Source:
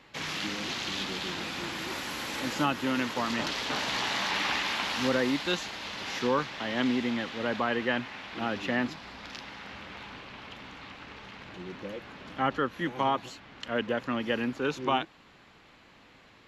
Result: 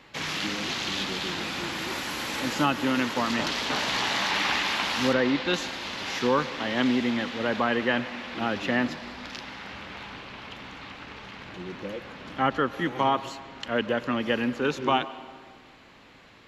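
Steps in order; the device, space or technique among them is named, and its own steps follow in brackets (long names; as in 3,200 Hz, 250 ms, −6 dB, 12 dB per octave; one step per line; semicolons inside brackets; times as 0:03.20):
filtered reverb send (on a send: high-pass filter 220 Hz + low-pass filter 5,300 Hz + convolution reverb RT60 1.7 s, pre-delay 99 ms, DRR 15 dB)
0:05.13–0:05.54: on the sum: low-pass filter 4,000 Hz 12 dB per octave
level +3.5 dB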